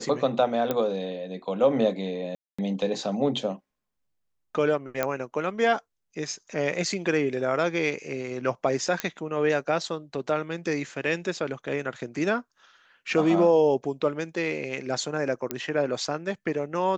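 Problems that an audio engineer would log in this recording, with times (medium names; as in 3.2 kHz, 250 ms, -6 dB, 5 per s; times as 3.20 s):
0.71 s: pop -12 dBFS
2.35–2.58 s: dropout 235 ms
5.03 s: pop -11 dBFS
9.00 s: pop -10 dBFS
15.51 s: pop -12 dBFS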